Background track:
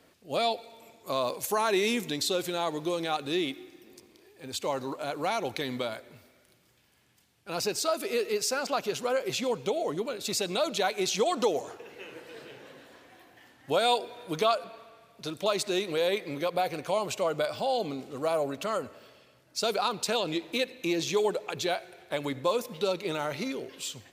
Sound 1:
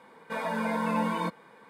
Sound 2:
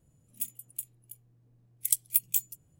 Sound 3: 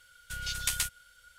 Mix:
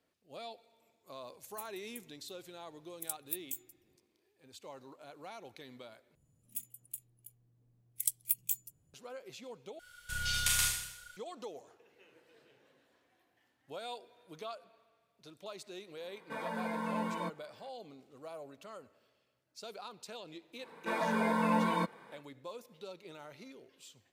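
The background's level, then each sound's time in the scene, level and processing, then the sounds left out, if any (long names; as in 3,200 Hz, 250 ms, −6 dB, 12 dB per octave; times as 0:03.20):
background track −18.5 dB
0:01.17: mix in 2 −13.5 dB
0:06.15: overwrite with 2 −6.5 dB
0:09.79: overwrite with 3 −2.5 dB + four-comb reverb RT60 0.79 s, combs from 26 ms, DRR −2.5 dB
0:16.00: mix in 1 −8 dB
0:20.56: mix in 1 −1.5 dB, fades 0.10 s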